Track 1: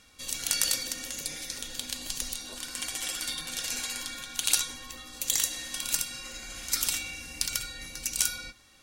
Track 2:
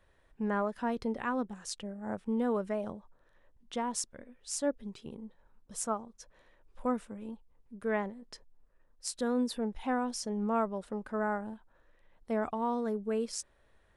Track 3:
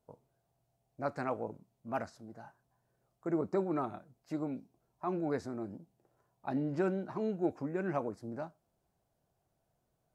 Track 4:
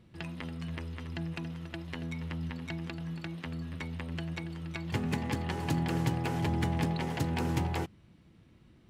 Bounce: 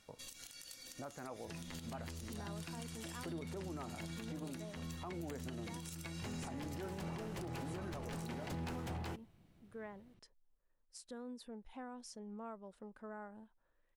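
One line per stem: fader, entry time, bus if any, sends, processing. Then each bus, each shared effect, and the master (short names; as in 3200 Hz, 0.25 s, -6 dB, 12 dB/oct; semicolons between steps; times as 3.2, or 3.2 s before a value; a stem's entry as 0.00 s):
-9.5 dB, 0.00 s, bus A, no send, compressor, threshold -36 dBFS, peak gain reduction 17 dB
-13.5 dB, 1.90 s, bus A, no send, dry
+0.5 dB, 0.00 s, bus A, no send, dry
-8.0 dB, 1.30 s, no bus, no send, wavefolder -27.5 dBFS
bus A: 0.0 dB, compressor 2:1, threshold -47 dBFS, peak gain reduction 11.5 dB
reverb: off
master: limiter -36 dBFS, peak gain reduction 8.5 dB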